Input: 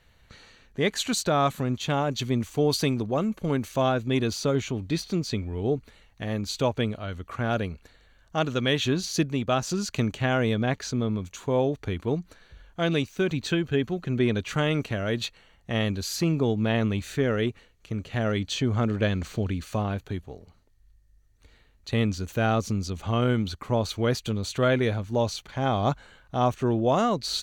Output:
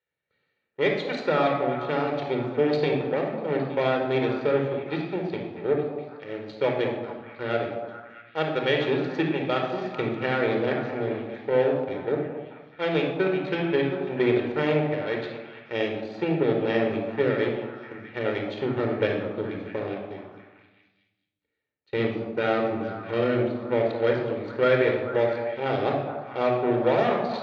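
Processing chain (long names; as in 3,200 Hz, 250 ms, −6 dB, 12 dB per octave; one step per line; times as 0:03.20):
harmonic generator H 3 −17 dB, 5 −29 dB, 7 −20 dB, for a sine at −12 dBFS
loudspeaker in its box 260–3,400 Hz, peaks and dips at 270 Hz −3 dB, 980 Hz −9 dB, 1,400 Hz −3 dB, 3,000 Hz −5 dB
echo through a band-pass that steps 216 ms, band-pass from 710 Hz, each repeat 0.7 octaves, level −6.5 dB
rectangular room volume 3,900 cubic metres, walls furnished, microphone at 4.5 metres
level +2 dB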